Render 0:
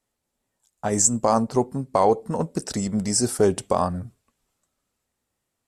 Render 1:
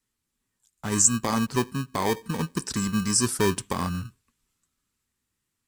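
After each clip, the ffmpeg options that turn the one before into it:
-filter_complex "[0:a]equalizer=f=620:w=1.5:g=-12,acrossover=split=720|3700[s0][s1][s2];[s0]acrusher=samples=32:mix=1:aa=0.000001[s3];[s3][s1][s2]amix=inputs=3:normalize=0"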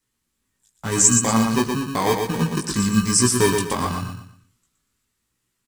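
-filter_complex "[0:a]flanger=delay=16:depth=3.6:speed=0.91,asplit=2[s0][s1];[s1]aecho=0:1:119|238|357|476:0.562|0.174|0.054|0.0168[s2];[s0][s2]amix=inputs=2:normalize=0,volume=2.37"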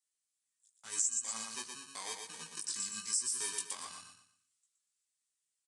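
-af "aderivative,aresample=22050,aresample=44100,acompressor=threshold=0.0708:ratio=6,volume=0.422"

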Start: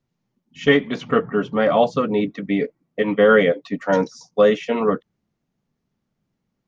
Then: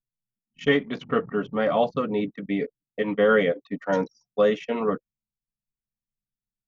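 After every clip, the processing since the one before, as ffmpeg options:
-af "anlmdn=2.51,volume=0.531"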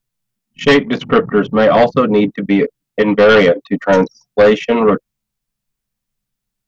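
-af "aeval=exprs='0.422*sin(PI/2*2.24*val(0)/0.422)':c=same,volume=1.5"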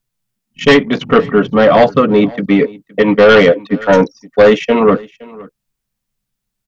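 -af "aecho=1:1:517:0.075,volume=1.26"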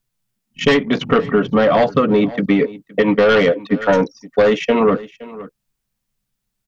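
-af "acompressor=threshold=0.282:ratio=5"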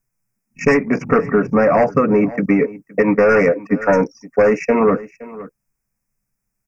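-af "asuperstop=centerf=3600:order=12:qfactor=1.5"

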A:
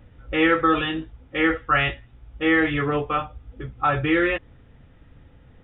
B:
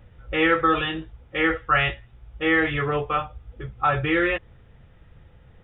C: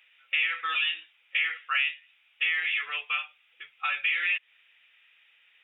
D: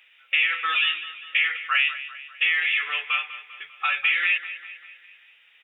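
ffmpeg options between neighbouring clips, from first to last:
-af "equalizer=f=270:t=o:w=0.27:g=-13"
-af "highpass=f=2500:t=q:w=4.1,acompressor=threshold=0.0562:ratio=4"
-af "aecho=1:1:198|396|594|792|990:0.2|0.104|0.054|0.0281|0.0146,volume=1.78"

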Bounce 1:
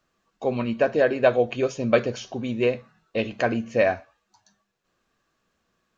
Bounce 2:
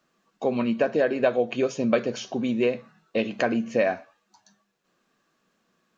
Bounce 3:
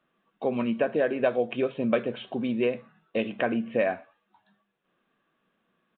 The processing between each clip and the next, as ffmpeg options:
-af "lowshelf=f=120:t=q:w=1.5:g=-12.5,acompressor=threshold=0.0631:ratio=2,volume=1.26"
-af "aresample=8000,aresample=44100,volume=0.75"

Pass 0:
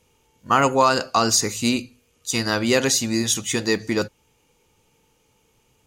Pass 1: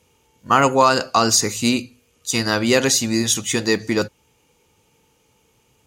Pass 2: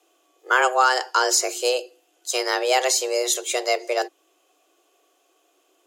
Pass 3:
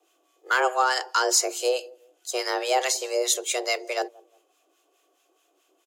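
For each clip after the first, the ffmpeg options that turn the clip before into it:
-af "highpass=45,volume=1.33"
-af "afreqshift=250,volume=0.668"
-filter_complex "[0:a]acrossover=split=1000[s0][s1];[s0]aeval=exprs='val(0)*(1-0.7/2+0.7/2*cos(2*PI*4.7*n/s))':c=same[s2];[s1]aeval=exprs='val(0)*(1-0.7/2-0.7/2*cos(2*PI*4.7*n/s))':c=same[s3];[s2][s3]amix=inputs=2:normalize=0,acrossover=split=1100|2900[s4][s5][s6];[s4]aecho=1:1:177|354:0.0708|0.0198[s7];[s5]volume=11.2,asoftclip=hard,volume=0.0891[s8];[s7][s8][s6]amix=inputs=3:normalize=0"

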